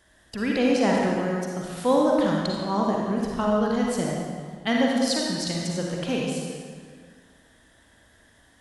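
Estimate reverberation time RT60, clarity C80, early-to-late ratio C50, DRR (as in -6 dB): 1.9 s, 0.5 dB, -1.5 dB, -2.5 dB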